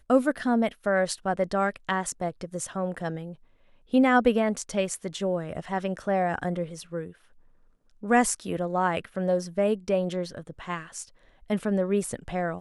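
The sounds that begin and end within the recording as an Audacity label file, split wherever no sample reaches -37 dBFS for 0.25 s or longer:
3.930000	7.110000	sound
8.030000	11.030000	sound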